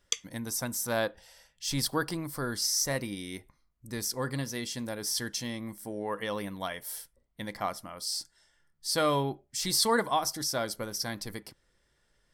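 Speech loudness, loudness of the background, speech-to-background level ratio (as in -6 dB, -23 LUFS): -31.5 LUFS, -34.5 LUFS, 3.0 dB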